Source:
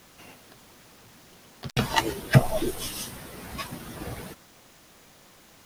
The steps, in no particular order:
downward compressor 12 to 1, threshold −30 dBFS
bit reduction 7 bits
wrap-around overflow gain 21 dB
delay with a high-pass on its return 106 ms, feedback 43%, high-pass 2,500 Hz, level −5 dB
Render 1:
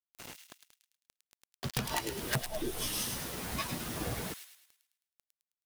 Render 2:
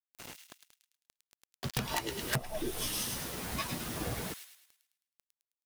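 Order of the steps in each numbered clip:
bit reduction, then downward compressor, then wrap-around overflow, then delay with a high-pass on its return
bit reduction, then delay with a high-pass on its return, then downward compressor, then wrap-around overflow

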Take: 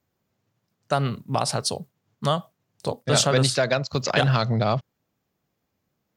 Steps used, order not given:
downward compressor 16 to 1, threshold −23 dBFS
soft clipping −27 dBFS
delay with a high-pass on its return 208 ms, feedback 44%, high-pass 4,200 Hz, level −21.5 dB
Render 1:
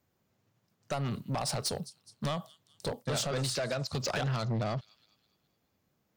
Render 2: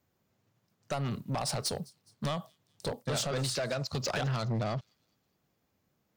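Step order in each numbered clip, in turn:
delay with a high-pass on its return, then downward compressor, then soft clipping
downward compressor, then soft clipping, then delay with a high-pass on its return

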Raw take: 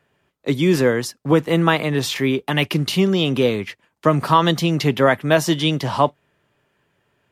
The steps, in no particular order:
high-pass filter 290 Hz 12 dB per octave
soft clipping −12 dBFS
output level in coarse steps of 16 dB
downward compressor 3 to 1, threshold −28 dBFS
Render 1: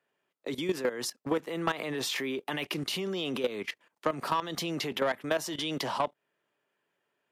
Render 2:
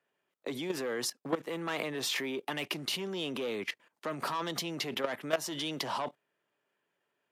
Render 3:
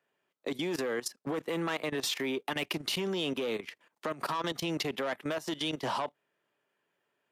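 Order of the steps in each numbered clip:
high-pass filter, then output level in coarse steps, then soft clipping, then downward compressor
soft clipping, then output level in coarse steps, then downward compressor, then high-pass filter
soft clipping, then high-pass filter, then downward compressor, then output level in coarse steps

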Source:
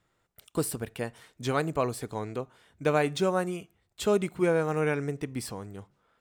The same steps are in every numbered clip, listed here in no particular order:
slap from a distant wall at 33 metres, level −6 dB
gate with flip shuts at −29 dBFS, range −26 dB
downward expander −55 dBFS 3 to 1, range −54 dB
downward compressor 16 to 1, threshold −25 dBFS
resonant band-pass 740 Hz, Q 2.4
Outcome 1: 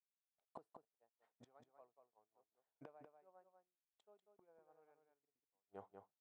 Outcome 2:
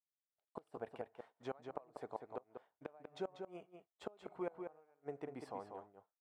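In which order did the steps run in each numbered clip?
downward compressor, then gate with flip, then resonant band-pass, then downward expander, then slap from a distant wall
downward compressor, then resonant band-pass, then gate with flip, then slap from a distant wall, then downward expander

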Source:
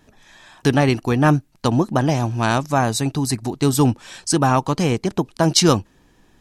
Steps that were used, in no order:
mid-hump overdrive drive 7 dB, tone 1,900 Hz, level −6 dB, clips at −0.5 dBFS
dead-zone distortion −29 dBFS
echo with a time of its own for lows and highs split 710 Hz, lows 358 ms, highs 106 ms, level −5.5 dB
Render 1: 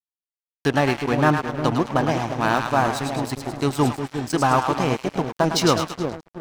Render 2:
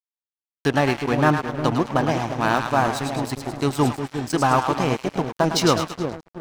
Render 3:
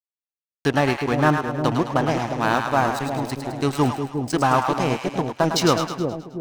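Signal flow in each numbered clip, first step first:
echo with a time of its own for lows and highs, then mid-hump overdrive, then dead-zone distortion
mid-hump overdrive, then echo with a time of its own for lows and highs, then dead-zone distortion
mid-hump overdrive, then dead-zone distortion, then echo with a time of its own for lows and highs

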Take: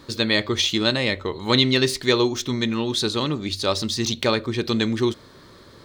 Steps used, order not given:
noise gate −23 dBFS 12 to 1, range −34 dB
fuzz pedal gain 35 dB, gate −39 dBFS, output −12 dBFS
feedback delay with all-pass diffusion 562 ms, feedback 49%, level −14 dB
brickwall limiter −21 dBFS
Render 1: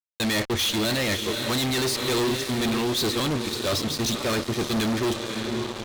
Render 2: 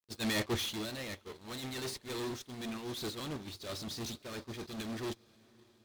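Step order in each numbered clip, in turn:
noise gate, then feedback delay with all-pass diffusion, then fuzz pedal, then brickwall limiter
fuzz pedal, then feedback delay with all-pass diffusion, then brickwall limiter, then noise gate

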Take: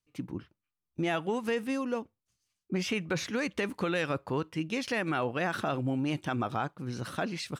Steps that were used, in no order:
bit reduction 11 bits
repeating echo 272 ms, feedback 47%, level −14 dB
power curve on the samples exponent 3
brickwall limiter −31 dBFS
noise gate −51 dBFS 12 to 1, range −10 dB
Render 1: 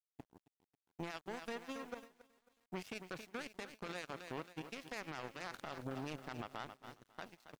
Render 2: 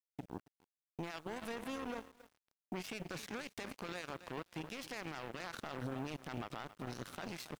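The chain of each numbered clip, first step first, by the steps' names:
power curve on the samples, then repeating echo, then bit reduction, then noise gate, then brickwall limiter
noise gate, then repeating echo, then brickwall limiter, then power curve on the samples, then bit reduction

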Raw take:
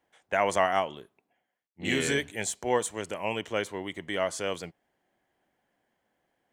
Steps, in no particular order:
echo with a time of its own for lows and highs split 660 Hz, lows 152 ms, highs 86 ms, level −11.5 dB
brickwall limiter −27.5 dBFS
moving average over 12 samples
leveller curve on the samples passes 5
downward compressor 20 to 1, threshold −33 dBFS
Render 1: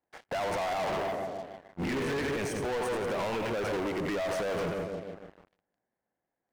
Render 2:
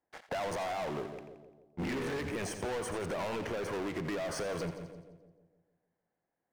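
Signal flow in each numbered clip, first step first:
echo with a time of its own for lows and highs, then brickwall limiter, then moving average, then downward compressor, then leveller curve on the samples
brickwall limiter, then moving average, then leveller curve on the samples, then echo with a time of its own for lows and highs, then downward compressor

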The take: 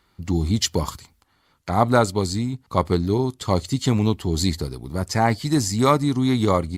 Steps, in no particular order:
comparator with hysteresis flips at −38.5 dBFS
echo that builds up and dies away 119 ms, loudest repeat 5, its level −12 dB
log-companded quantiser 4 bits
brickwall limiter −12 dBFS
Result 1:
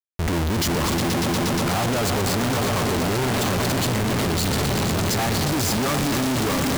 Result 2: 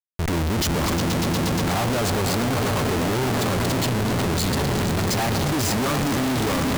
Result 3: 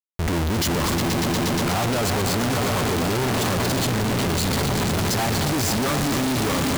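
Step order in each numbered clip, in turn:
log-companded quantiser, then brickwall limiter, then echo that builds up and dies away, then comparator with hysteresis
brickwall limiter, then echo that builds up and dies away, then log-companded quantiser, then comparator with hysteresis
brickwall limiter, then log-companded quantiser, then echo that builds up and dies away, then comparator with hysteresis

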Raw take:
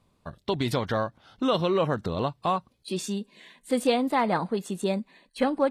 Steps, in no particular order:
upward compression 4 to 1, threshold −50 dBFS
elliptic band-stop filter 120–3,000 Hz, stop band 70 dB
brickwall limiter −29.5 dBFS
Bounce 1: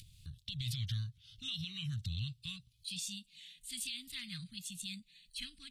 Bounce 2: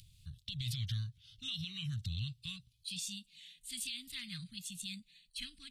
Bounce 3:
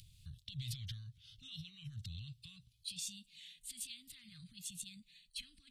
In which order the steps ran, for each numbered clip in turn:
elliptic band-stop filter, then upward compression, then brickwall limiter
upward compression, then elliptic band-stop filter, then brickwall limiter
upward compression, then brickwall limiter, then elliptic band-stop filter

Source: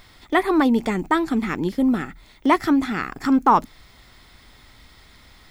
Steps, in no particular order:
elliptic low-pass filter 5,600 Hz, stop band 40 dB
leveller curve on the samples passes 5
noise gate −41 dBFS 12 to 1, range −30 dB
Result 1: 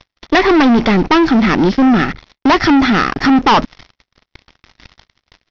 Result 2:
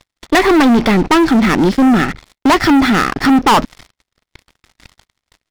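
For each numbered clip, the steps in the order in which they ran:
leveller curve on the samples, then noise gate, then elliptic low-pass filter
elliptic low-pass filter, then leveller curve on the samples, then noise gate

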